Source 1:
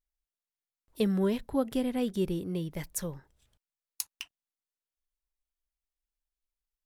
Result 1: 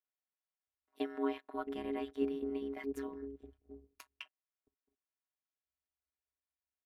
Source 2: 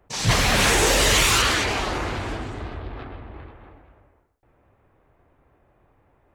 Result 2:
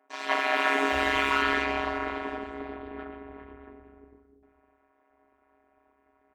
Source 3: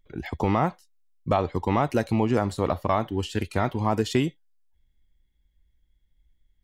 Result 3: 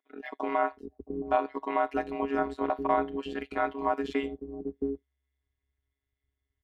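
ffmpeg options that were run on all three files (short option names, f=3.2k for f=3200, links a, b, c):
-filter_complex "[0:a]acrossover=split=2900[a][b];[b]asoftclip=type=tanh:threshold=-25dB[c];[a][c]amix=inputs=2:normalize=0,acrossover=split=190 2800:gain=0.0891 1 0.0891[d][e][f];[d][e][f]amix=inputs=3:normalize=0,acrossover=split=330[g][h];[g]adelay=670[i];[i][h]amix=inputs=2:normalize=0,afftfilt=real='hypot(re,im)*cos(PI*b)':imag='0':win_size=512:overlap=0.75,aeval=exprs='val(0)*sin(2*PI*68*n/s)':c=same,volume=4.5dB"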